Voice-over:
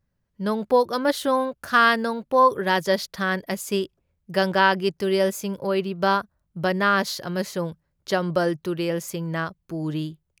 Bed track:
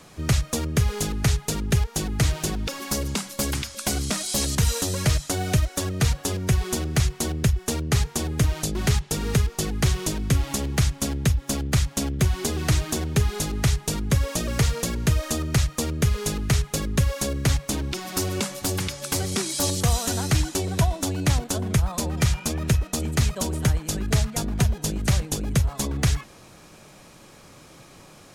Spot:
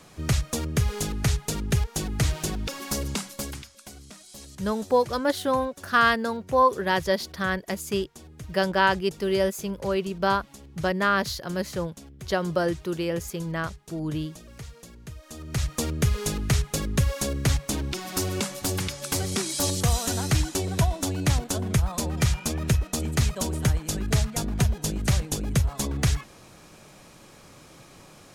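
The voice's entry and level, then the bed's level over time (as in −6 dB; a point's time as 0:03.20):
4.20 s, −2.5 dB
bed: 0:03.23 −2.5 dB
0:03.93 −20 dB
0:15.21 −20 dB
0:15.71 −1.5 dB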